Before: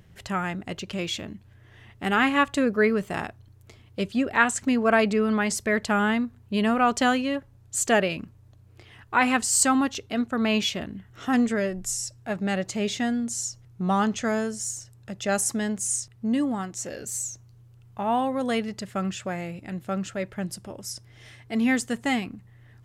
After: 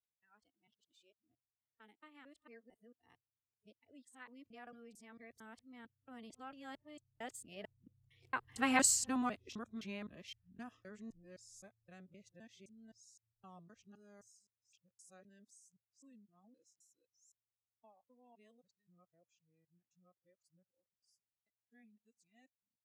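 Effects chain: time reversed locally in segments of 242 ms; Doppler pass-by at 8.81 s, 24 m/s, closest 5.5 m; spectral noise reduction 18 dB; trim -8.5 dB

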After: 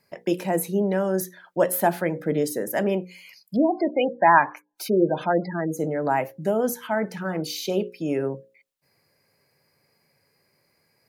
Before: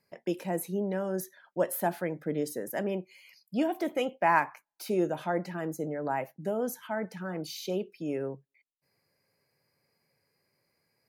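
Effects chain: hum notches 60/120/180/240/300/360/420/480/540 Hz; 3.56–5.77 s: spectral gate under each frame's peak -20 dB strong; trim +8.5 dB

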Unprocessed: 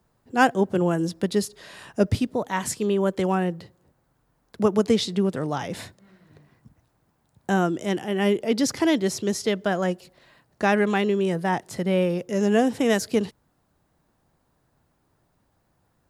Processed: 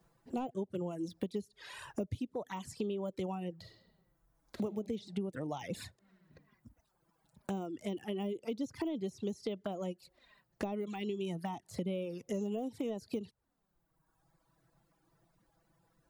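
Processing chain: de-esser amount 95%; reverb removal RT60 1.4 s; 3.57–4.63 s: reverb throw, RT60 1.1 s, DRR 2 dB; 10.88–11.64 s: peaking EQ 510 Hz -14 dB 0.44 oct; compression 16:1, threshold -34 dBFS, peak gain reduction 20 dB; touch-sensitive flanger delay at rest 6.5 ms, full sweep at -35 dBFS; trim +1.5 dB

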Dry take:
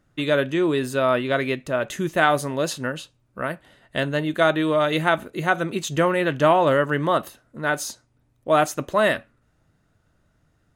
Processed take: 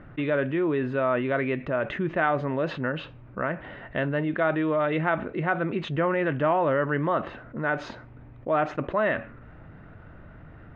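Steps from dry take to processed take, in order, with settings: low-pass 2.4 kHz 24 dB/octave; level flattener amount 50%; trim -7 dB

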